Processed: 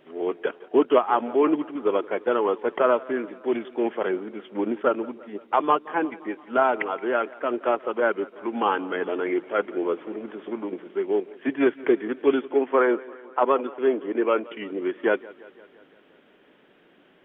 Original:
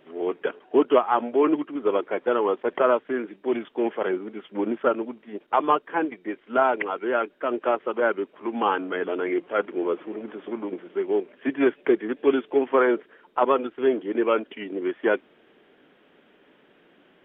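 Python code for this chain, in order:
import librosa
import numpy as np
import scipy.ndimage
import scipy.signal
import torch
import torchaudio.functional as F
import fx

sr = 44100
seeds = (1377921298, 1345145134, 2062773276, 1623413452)

y = fx.bandpass_edges(x, sr, low_hz=200.0, high_hz=3000.0, at=(12.42, 14.44))
y = fx.echo_warbled(y, sr, ms=172, feedback_pct=62, rate_hz=2.8, cents=50, wet_db=-21.0)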